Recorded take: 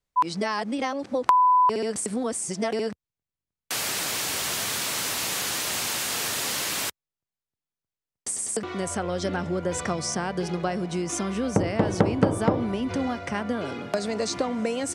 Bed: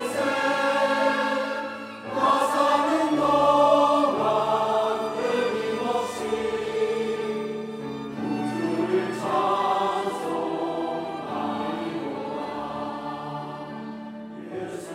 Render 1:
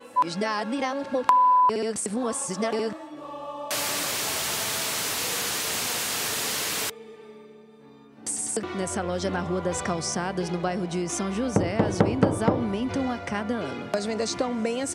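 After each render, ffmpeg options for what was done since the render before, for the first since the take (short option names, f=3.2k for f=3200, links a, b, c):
-filter_complex "[1:a]volume=-17.5dB[a];[0:a][a]amix=inputs=2:normalize=0"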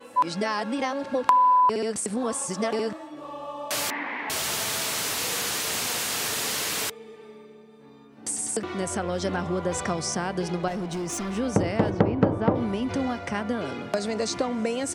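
-filter_complex "[0:a]asettb=1/sr,asplit=3[a][b][c];[a]atrim=end=3.904[d];[b]atrim=start=3.9:end=4.3,asetpts=PTS-STARTPTS,afade=t=in:d=0.004:c=qsin,afade=t=out:st=0.396:d=0.004:c=qsin,highpass=f=240:w=0.5412,highpass=f=240:w=1.3066,equalizer=f=260:t=q:w=4:g=9,equalizer=f=390:t=q:w=4:g=-8,equalizer=f=600:t=q:w=4:g=-8,equalizer=f=920:t=q:w=4:g=7,equalizer=f=1.3k:t=q:w=4:g=-7,equalizer=f=2k:t=q:w=4:g=10,lowpass=f=2.1k:w=0.5412,lowpass=f=2.1k:w=1.3066[e];[c]atrim=start=4.296[f];[d][e]acrossfade=d=0.004:c1=hsin:c2=qsin[g];[g][f]acrossfade=d=0.004:c1=qsin:c2=hsin,asettb=1/sr,asplit=3[h][i][j];[h]atrim=end=10.684[k];[i]atrim=start=10.68:end=11.37,asetpts=PTS-STARTPTS,afade=t=in:d=0.004:c=qsin,afade=t=out:st=0.686:d=0.004:c=qsin,asoftclip=type=hard:threshold=-26.5dB[l];[j]atrim=start=11.366[m];[k][l]acrossfade=d=0.004:c1=hsin:c2=qsin[n];[n][m]acrossfade=d=0.004:c1=qsin:c2=hsin,asplit=3[o][p][q];[o]afade=t=out:st=11.89:d=0.02[r];[p]adynamicsmooth=sensitivity=0.5:basefreq=2.1k,afade=t=in:st=11.89:d=0.02,afade=t=out:st=12.54:d=0.02[s];[q]afade=t=in:st=12.54:d=0.02[t];[r][s][t]amix=inputs=3:normalize=0"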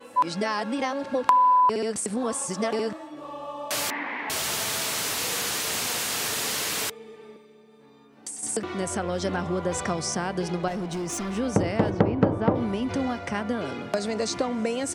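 -filter_complex "[0:a]asettb=1/sr,asplit=3[a][b][c];[a]atrim=end=7.364[d];[b]atrim=start=7.36:end=8.43,asetpts=PTS-STARTPTS,afade=t=in:d=0.004:c=qsin,afade=t=out:st=1.066:d=0.004:c=qsin,acrossover=split=360|2600[e][f][g];[e]acompressor=threshold=-57dB:ratio=4[h];[f]acompressor=threshold=-54dB:ratio=4[i];[g]acompressor=threshold=-35dB:ratio=4[j];[h][i][j]amix=inputs=3:normalize=0[k];[c]atrim=start=8.426[l];[d][k]acrossfade=d=0.004:c1=hsin:c2=qsin[m];[m][l]acrossfade=d=0.004:c1=qsin:c2=hsin"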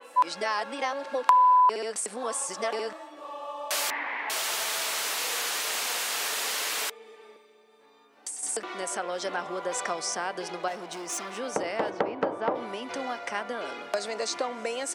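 -af "highpass=540,adynamicequalizer=threshold=0.01:dfrequency=3900:dqfactor=0.7:tfrequency=3900:tqfactor=0.7:attack=5:release=100:ratio=0.375:range=1.5:mode=cutabove:tftype=highshelf"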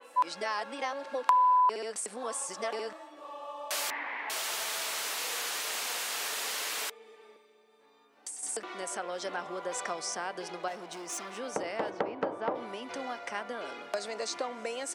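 -af "volume=-4.5dB"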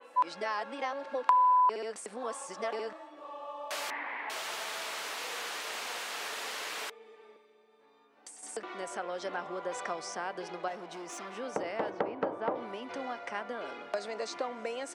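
-af "lowpass=f=2.9k:p=1"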